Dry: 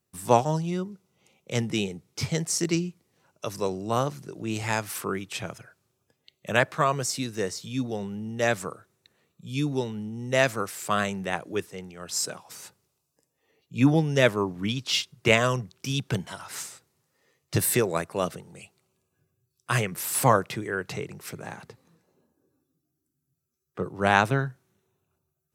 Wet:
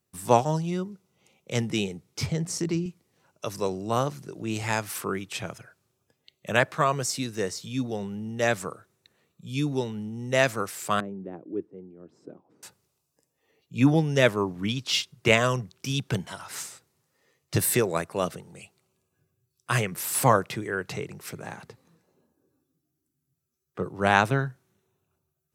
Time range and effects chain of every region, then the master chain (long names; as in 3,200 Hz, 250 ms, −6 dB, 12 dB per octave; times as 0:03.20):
0:02.26–0:02.86: spectral tilt −2 dB per octave + mains-hum notches 60/120/180/240/300 Hz + downward compressor 2 to 1, threshold −26 dBFS
0:11.00–0:12.63: resonant band-pass 310 Hz, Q 2.9 + spectral tilt −2 dB per octave
whole clip: no processing